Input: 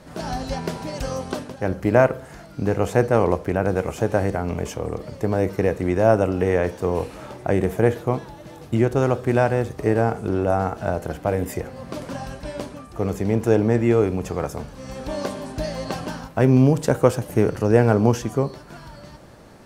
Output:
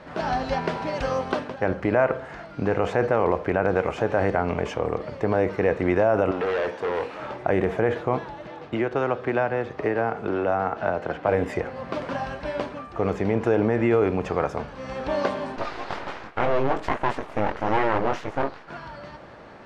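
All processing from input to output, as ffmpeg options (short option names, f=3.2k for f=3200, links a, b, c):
-filter_complex "[0:a]asettb=1/sr,asplit=3[a][b][c];[a]atrim=end=6.314[d];[b]atrim=start=6.31:end=7.2,asetpts=PTS-STARTPTS,afade=t=in:d=0.004:c=qsin,afade=t=out:st=0.886:d=0.004:c=qsin,highpass=f=260:p=1,volume=25dB,asoftclip=hard,volume=-25dB[e];[c]atrim=start=7.196[f];[d][e]acrossfade=d=0.004:c1=hsin:c2=qsin[g];[g][f]acrossfade=d=0.004:c1=qsin:c2=hsin,asettb=1/sr,asplit=3[h][i][j];[h]atrim=end=8.474[k];[i]atrim=start=8.47:end=11.29,asetpts=PTS-STARTPTS,afade=t=in:d=0.004:c=qsin,afade=t=out:st=2.816:d=0.004:c=qsin,highpass=f=140:p=1,equalizer=f=10k:t=o:w=1:g=-10,acrossover=split=280|1400[l][m][n];[l]acompressor=threshold=-30dB:ratio=4[o];[m]acompressor=threshold=-26dB:ratio=4[p];[n]acompressor=threshold=-38dB:ratio=4[q];[o][p][q]amix=inputs=3:normalize=0[r];[j]atrim=start=11.286[s];[k][r]acrossfade=d=0.004:c1=hsin:c2=qsin[t];[t][s]acrossfade=d=0.004:c1=qsin:c2=hsin,asettb=1/sr,asplit=3[u][v][w];[u]atrim=end=15.564[x];[v]atrim=start=15.56:end=18.68,asetpts=PTS-STARTPTS,afade=t=in:d=0.004:c=qsin,afade=t=out:st=3.116:d=0.004:c=qsin,flanger=delay=19:depth=3.5:speed=2.2,aeval=exprs='abs(val(0))':c=same[y];[w]atrim=start=18.676[z];[x][y]acrossfade=d=0.004:c1=hsin:c2=qsin[aa];[aa][z]acrossfade=d=0.004:c1=qsin:c2=hsin,lowpass=2.6k,alimiter=limit=-12dB:level=0:latency=1:release=40,lowshelf=f=370:g=-11.5,volume=7dB"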